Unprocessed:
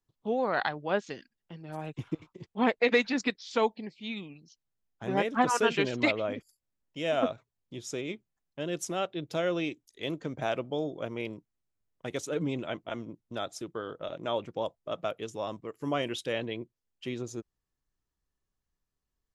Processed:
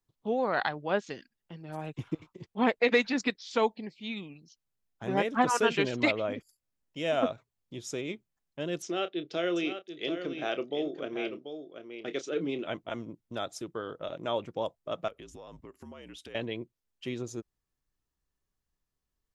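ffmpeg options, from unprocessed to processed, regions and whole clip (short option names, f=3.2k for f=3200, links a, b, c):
-filter_complex "[0:a]asettb=1/sr,asplit=3[a][b][c];[a]atrim=end=8.824[d];[b]atrim=start=8.82:end=12.67,asetpts=PTS-STARTPTS,afade=t=in:d=0.004:c=qsin,afade=t=out:st=3.846:d=0.004:c=qsin,highpass=260,equalizer=f=370:t=q:w=4:g=6,equalizer=f=550:t=q:w=4:g=-3,equalizer=f=940:t=q:w=4:g=-10,equalizer=f=3k:t=q:w=4:g=3,lowpass=f=5.6k:w=0.5412,lowpass=f=5.6k:w=1.3066,asplit=2[e][f];[f]adelay=29,volume=-12dB[g];[e][g]amix=inputs=2:normalize=0,atrim=end_sample=169785,aecho=1:1:736:0.355,atrim=end_sample=169785[h];[c]atrim=start=12.666[i];[d][h]acrossfade=d=0.004:c1=hsin:c2=qsin[j];[j][i]acrossfade=d=0.004:c1=qsin:c2=hsin,asettb=1/sr,asplit=3[k][l][m];[k]atrim=end=15.084[n];[l]atrim=start=15.08:end=16.35,asetpts=PTS-STARTPTS,afade=t=in:d=0.004:c=qsin,afade=t=out:st=1.266:d=0.004:c=qsin,afreqshift=-56,acompressor=threshold=-43dB:ratio=12:attack=3.2:release=140:knee=1:detection=peak[o];[m]atrim=start=16.346[p];[n][o]acrossfade=d=0.004:c1=hsin:c2=qsin[q];[q][p]acrossfade=d=0.004:c1=qsin:c2=hsin"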